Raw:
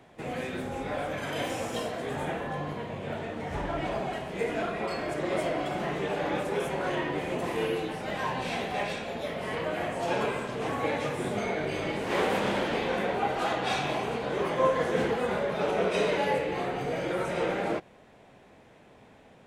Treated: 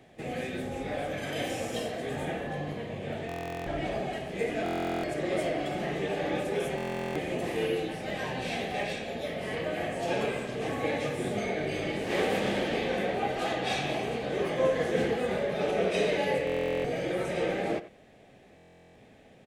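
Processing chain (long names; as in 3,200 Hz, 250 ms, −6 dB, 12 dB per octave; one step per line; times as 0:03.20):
parametric band 1,000 Hz −13.5 dB 0.29 octaves
notch filter 1,400 Hz, Q 6.5
far-end echo of a speakerphone 90 ms, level −14 dB
buffer that repeats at 0:03.27/0:04.64/0:06.76/0:16.45/0:18.56, samples 1,024, times 16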